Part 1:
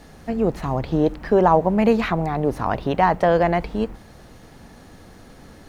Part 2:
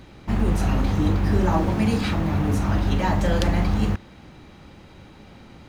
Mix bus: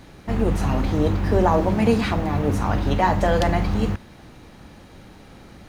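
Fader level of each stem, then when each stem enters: −4.0, −1.0 decibels; 0.00, 0.00 seconds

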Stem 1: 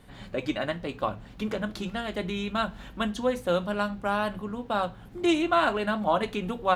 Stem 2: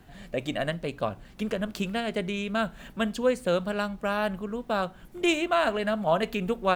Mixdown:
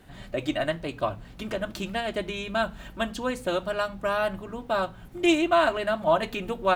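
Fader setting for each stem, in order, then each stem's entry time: −2.5, −1.0 decibels; 0.00, 0.00 seconds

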